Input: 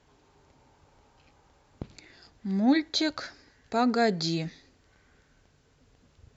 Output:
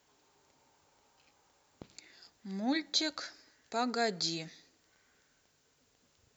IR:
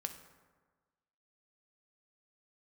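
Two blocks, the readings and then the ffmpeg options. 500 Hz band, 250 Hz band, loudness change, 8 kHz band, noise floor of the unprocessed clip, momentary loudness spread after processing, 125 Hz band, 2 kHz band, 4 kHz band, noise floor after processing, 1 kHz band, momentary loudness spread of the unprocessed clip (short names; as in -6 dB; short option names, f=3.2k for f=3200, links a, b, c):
-8.0 dB, -11.0 dB, -6.5 dB, n/a, -64 dBFS, 22 LU, -13.0 dB, -5.5 dB, -2.0 dB, -72 dBFS, -7.0 dB, 21 LU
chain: -filter_complex "[0:a]aemphasis=mode=production:type=bsi,asplit=2[a][b];[1:a]atrim=start_sample=2205,asetrate=48510,aresample=44100[c];[b][c]afir=irnorm=-1:irlink=0,volume=-14.5dB[d];[a][d]amix=inputs=2:normalize=0,volume=-7.5dB"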